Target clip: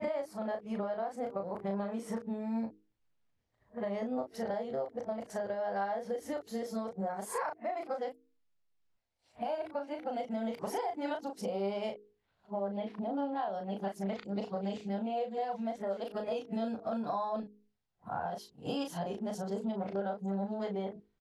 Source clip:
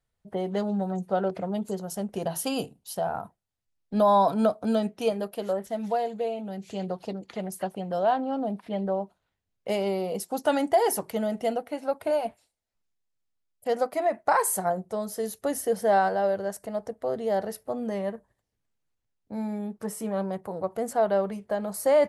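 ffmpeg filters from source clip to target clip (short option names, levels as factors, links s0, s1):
-filter_complex "[0:a]areverse,lowpass=4600,bandreject=f=50:t=h:w=6,bandreject=f=100:t=h:w=6,bandreject=f=150:t=h:w=6,bandreject=f=200:t=h:w=6,bandreject=f=250:t=h:w=6,bandreject=f=300:t=h:w=6,bandreject=f=350:t=h:w=6,bandreject=f=400:t=h:w=6,bandreject=f=450:t=h:w=6,acompressor=threshold=0.0224:ratio=12,asplit=2[s0][s1];[s1]adelay=37,volume=0.531[s2];[s0][s2]amix=inputs=2:normalize=0,asetrate=45938,aresample=44100"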